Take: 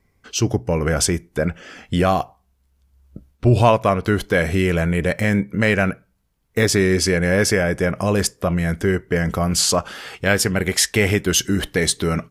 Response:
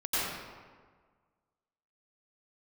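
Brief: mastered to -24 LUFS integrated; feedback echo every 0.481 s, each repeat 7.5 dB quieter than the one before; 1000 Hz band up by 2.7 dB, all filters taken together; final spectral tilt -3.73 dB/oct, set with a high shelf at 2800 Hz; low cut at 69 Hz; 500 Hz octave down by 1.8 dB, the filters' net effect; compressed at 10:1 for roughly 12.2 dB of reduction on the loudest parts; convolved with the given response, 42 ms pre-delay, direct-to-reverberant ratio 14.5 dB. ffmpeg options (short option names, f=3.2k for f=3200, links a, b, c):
-filter_complex "[0:a]highpass=69,equalizer=f=500:t=o:g=-3.5,equalizer=f=1k:t=o:g=4,highshelf=f=2.8k:g=5.5,acompressor=threshold=-21dB:ratio=10,aecho=1:1:481|962|1443|1924|2405:0.422|0.177|0.0744|0.0312|0.0131,asplit=2[a][b];[1:a]atrim=start_sample=2205,adelay=42[c];[b][c]afir=irnorm=-1:irlink=0,volume=-24.5dB[d];[a][d]amix=inputs=2:normalize=0,volume=1.5dB"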